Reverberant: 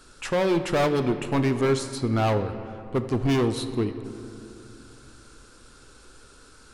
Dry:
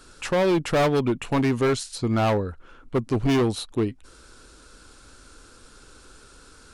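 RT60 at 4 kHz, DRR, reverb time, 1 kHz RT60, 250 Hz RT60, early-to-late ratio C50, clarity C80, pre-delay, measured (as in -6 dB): 1.5 s, 8.5 dB, 2.9 s, 2.8 s, 3.3 s, 10.0 dB, 11.0 dB, 8 ms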